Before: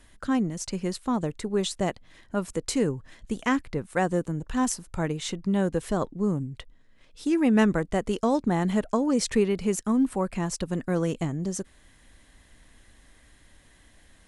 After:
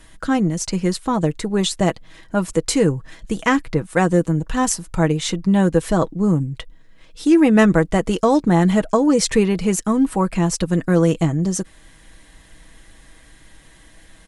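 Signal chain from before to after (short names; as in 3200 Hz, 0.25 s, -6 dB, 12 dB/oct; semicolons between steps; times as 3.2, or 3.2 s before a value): comb 6.2 ms, depth 46%; gain +8 dB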